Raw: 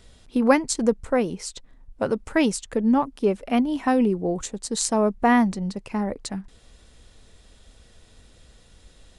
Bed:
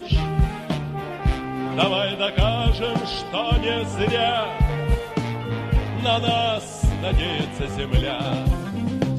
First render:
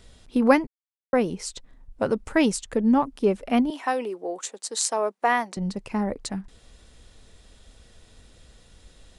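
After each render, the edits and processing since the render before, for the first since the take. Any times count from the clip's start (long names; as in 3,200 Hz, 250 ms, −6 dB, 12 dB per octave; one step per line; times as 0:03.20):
0:00.67–0:01.13: silence
0:03.70–0:05.57: Bessel high-pass filter 540 Hz, order 4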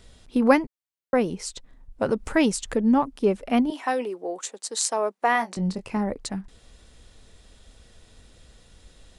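0:02.09–0:02.91: upward compression, threshold −24 dBFS
0:03.64–0:04.07: double-tracking delay 16 ms −11 dB
0:05.33–0:05.97: double-tracking delay 22 ms −7.5 dB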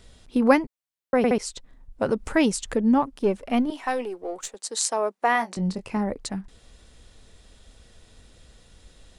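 0:01.17: stutter in place 0.07 s, 3 plays
0:03.06–0:04.55: gain on one half-wave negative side −3 dB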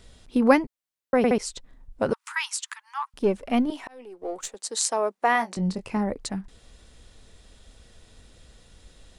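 0:02.13–0:03.14: Butterworth high-pass 930 Hz 72 dB per octave
0:03.81–0:04.22: volume swells 709 ms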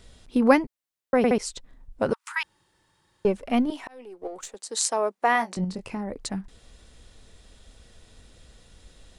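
0:02.43–0:03.25: fill with room tone
0:04.27–0:04.69: downward compressor, threshold −33 dBFS
0:05.64–0:06.13: downward compressor, threshold −27 dBFS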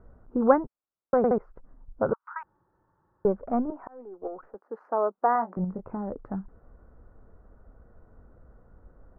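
elliptic low-pass filter 1,400 Hz, stop band 60 dB
dynamic equaliser 270 Hz, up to −6 dB, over −37 dBFS, Q 2.7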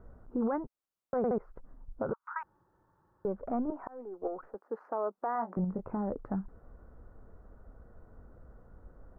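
downward compressor 2.5 to 1, threshold −27 dBFS, peak gain reduction 10 dB
brickwall limiter −23.5 dBFS, peak gain reduction 9.5 dB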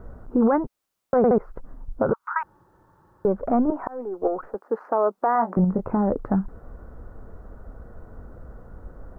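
level +12 dB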